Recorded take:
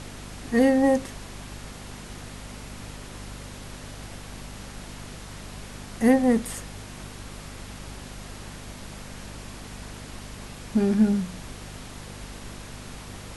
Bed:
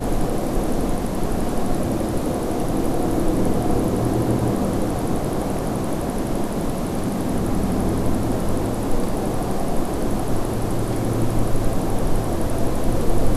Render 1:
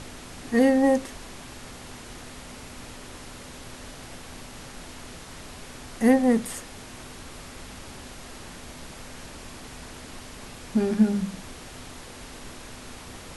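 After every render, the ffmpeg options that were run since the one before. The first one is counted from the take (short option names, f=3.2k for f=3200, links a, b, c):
-af "bandreject=f=50:t=h:w=4,bandreject=f=100:t=h:w=4,bandreject=f=150:t=h:w=4,bandreject=f=200:t=h:w=4"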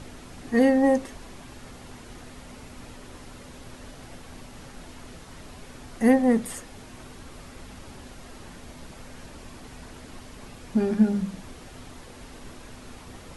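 -af "afftdn=nr=6:nf=-43"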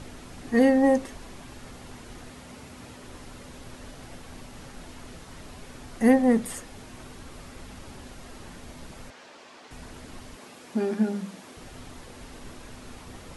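-filter_complex "[0:a]asettb=1/sr,asplit=3[a][b][c];[a]atrim=end=2.314[d];[b]atrim=start=2.31:end=3.04,asetpts=PTS-STARTPTS,afade=t=in:d=0.004:c=qsin,afade=t=out:st=0.726:d=0.004:c=qsin,highpass=66[e];[c]atrim=start=3.036[f];[d][e]acrossfade=d=0.004:c1=hsin:c2=qsin[g];[g][f]acrossfade=d=0.004:c1=qsin:c2=hsin,asettb=1/sr,asplit=3[h][i][j];[h]atrim=end=9.104[k];[i]atrim=start=9.1:end=9.71,asetpts=PTS-STARTPTS,afade=t=in:d=0.004:c=qsin,afade=t=out:st=0.606:d=0.004:c=qsin,highpass=450,lowpass=5.8k[l];[j]atrim=start=9.706[m];[k][l]acrossfade=d=0.004:c1=hsin:c2=qsin[n];[n][m]acrossfade=d=0.004:c1=qsin:c2=hsin,asettb=1/sr,asplit=3[o][p][q];[o]atrim=end=10.364[r];[p]atrim=start=10.36:end=11.57,asetpts=PTS-STARTPTS,afade=t=in:d=0.004:c=qsin,afade=t=out:st=1.206:d=0.004:c=qsin,highpass=260[s];[q]atrim=start=11.566[t];[r][s]acrossfade=d=0.004:c1=hsin:c2=qsin[u];[u][t]acrossfade=d=0.004:c1=qsin:c2=hsin"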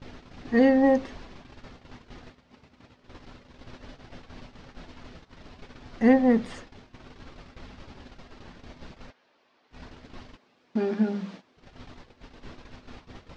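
-af "lowpass=f=5.1k:w=0.5412,lowpass=f=5.1k:w=1.3066,agate=range=-17dB:threshold=-42dB:ratio=16:detection=peak"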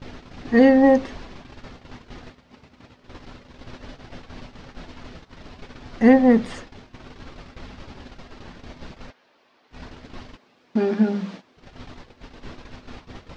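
-af "volume=5.5dB,alimiter=limit=-3dB:level=0:latency=1"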